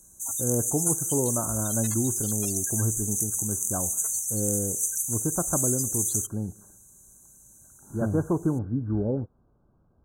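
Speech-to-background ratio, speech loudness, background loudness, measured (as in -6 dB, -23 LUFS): -4.5 dB, -30.5 LUFS, -26.0 LUFS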